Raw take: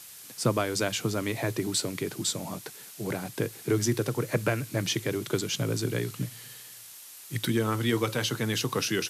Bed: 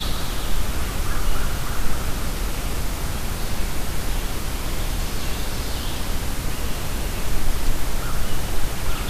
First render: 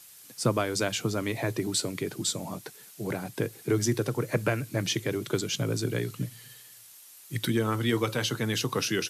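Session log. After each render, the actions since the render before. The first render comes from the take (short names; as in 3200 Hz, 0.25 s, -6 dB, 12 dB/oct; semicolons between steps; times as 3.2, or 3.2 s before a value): denoiser 6 dB, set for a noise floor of -47 dBFS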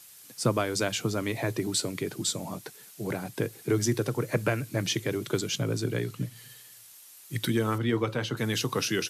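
5.58–6.36 high shelf 4700 Hz -4 dB; 7.78–8.37 LPF 2000 Hz 6 dB/oct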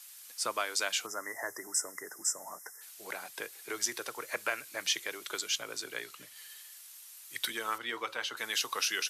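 1.06–2.81 spectral delete 2100–5000 Hz; HPF 960 Hz 12 dB/oct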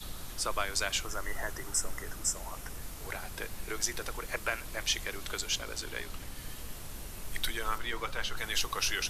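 add bed -18.5 dB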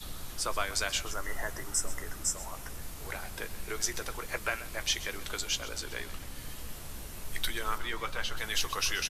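doubler 14 ms -11.5 dB; echo 0.13 s -16 dB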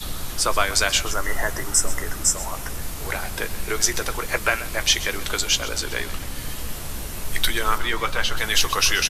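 gain +11.5 dB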